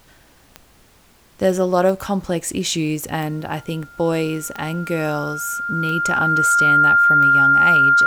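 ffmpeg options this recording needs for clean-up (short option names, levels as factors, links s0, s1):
-af "adeclick=t=4,bandreject=f=1400:w=30,agate=range=0.0891:threshold=0.00708"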